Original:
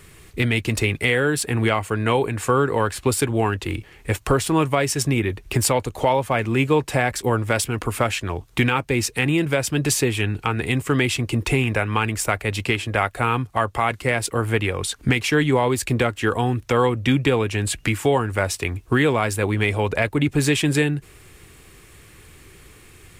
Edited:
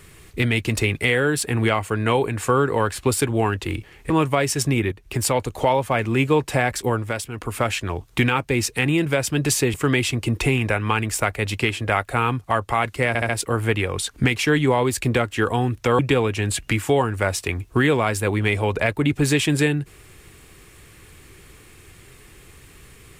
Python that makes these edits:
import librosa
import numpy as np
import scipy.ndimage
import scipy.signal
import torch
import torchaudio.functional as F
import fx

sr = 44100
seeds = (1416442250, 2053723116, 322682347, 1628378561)

y = fx.edit(x, sr, fx.cut(start_s=4.1, length_s=0.4),
    fx.fade_in_from(start_s=5.32, length_s=0.48, floor_db=-12.0),
    fx.fade_down_up(start_s=7.21, length_s=0.91, db=-8.0, fade_s=0.42),
    fx.cut(start_s=10.14, length_s=0.66),
    fx.stutter(start_s=14.14, slice_s=0.07, count=4),
    fx.cut(start_s=16.84, length_s=0.31), tone=tone)